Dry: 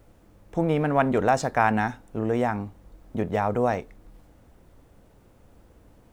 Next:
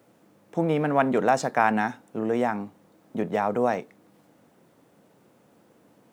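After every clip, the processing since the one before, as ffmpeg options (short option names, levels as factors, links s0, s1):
-af "highpass=f=150:w=0.5412,highpass=f=150:w=1.3066"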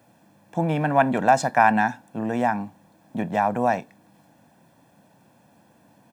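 -af "aecho=1:1:1.2:0.65,volume=1.19"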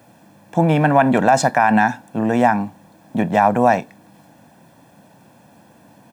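-af "alimiter=level_in=3.16:limit=0.891:release=50:level=0:latency=1,volume=0.794"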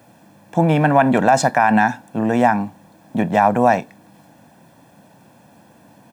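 -af anull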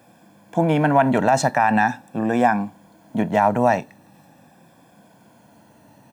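-af "afftfilt=real='re*pow(10,6/40*sin(2*PI*(1.8*log(max(b,1)*sr/1024/100)/log(2)-(-0.43)*(pts-256)/sr)))':imag='im*pow(10,6/40*sin(2*PI*(1.8*log(max(b,1)*sr/1024/100)/log(2)-(-0.43)*(pts-256)/sr)))':win_size=1024:overlap=0.75,volume=0.708"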